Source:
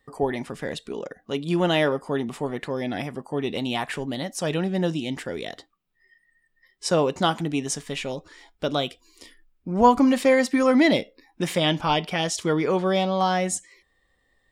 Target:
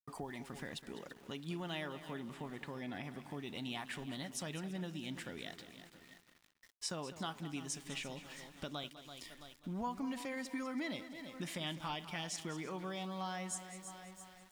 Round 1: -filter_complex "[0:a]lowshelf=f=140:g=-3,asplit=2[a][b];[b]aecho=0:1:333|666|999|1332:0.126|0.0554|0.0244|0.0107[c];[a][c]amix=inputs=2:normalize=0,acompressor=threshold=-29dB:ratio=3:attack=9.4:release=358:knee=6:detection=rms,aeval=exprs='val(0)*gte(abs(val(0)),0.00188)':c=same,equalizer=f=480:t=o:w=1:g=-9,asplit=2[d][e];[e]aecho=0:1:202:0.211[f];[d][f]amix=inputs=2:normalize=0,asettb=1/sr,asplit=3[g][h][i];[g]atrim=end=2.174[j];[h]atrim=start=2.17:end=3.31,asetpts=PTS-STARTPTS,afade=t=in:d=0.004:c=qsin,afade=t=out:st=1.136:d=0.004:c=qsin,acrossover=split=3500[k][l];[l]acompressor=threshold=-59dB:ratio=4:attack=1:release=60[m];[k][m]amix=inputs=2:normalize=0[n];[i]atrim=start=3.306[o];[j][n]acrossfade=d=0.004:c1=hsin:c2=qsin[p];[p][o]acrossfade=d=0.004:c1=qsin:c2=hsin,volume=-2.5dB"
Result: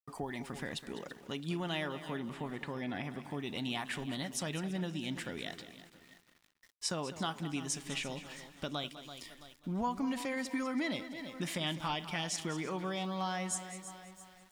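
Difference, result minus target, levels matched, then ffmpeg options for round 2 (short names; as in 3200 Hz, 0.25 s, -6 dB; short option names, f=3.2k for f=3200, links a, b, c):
compressor: peak gain reduction -5.5 dB
-filter_complex "[0:a]lowshelf=f=140:g=-3,asplit=2[a][b];[b]aecho=0:1:333|666|999|1332:0.126|0.0554|0.0244|0.0107[c];[a][c]amix=inputs=2:normalize=0,acompressor=threshold=-37dB:ratio=3:attack=9.4:release=358:knee=6:detection=rms,aeval=exprs='val(0)*gte(abs(val(0)),0.00188)':c=same,equalizer=f=480:t=o:w=1:g=-9,asplit=2[d][e];[e]aecho=0:1:202:0.211[f];[d][f]amix=inputs=2:normalize=0,asettb=1/sr,asplit=3[g][h][i];[g]atrim=end=2.174[j];[h]atrim=start=2.17:end=3.31,asetpts=PTS-STARTPTS,afade=t=in:d=0.004:c=qsin,afade=t=out:st=1.136:d=0.004:c=qsin,acrossover=split=3500[k][l];[l]acompressor=threshold=-59dB:ratio=4:attack=1:release=60[m];[k][m]amix=inputs=2:normalize=0[n];[i]atrim=start=3.306[o];[j][n]acrossfade=d=0.004:c1=hsin:c2=qsin[p];[p][o]acrossfade=d=0.004:c1=qsin:c2=hsin,volume=-2.5dB"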